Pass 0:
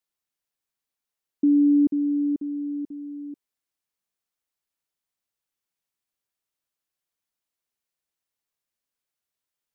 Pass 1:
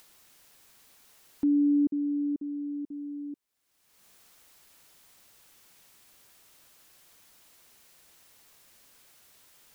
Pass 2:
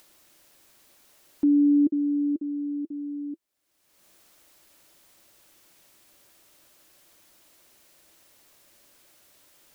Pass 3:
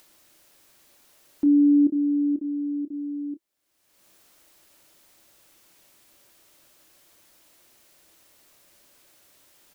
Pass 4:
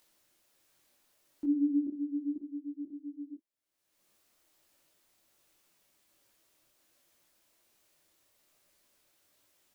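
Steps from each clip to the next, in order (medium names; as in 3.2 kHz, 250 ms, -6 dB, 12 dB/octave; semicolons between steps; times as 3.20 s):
upward compressor, threshold -27 dBFS; trim -5.5 dB
small resonant body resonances 330/580 Hz, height 8 dB, ringing for 40 ms
doubling 28 ms -10 dB
detune thickener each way 44 cents; trim -8.5 dB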